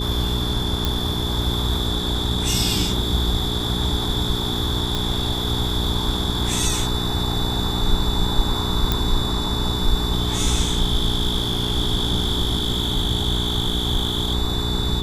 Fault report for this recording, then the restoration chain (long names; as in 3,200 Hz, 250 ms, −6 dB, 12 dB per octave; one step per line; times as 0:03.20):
mains hum 60 Hz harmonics 7 −26 dBFS
whistle 3,500 Hz −28 dBFS
0:00.85: click −6 dBFS
0:04.95: click
0:08.92: click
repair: click removal
notch filter 3,500 Hz, Q 30
hum removal 60 Hz, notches 7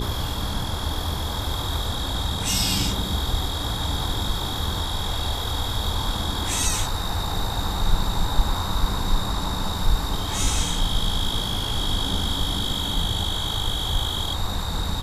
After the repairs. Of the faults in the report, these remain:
none of them is left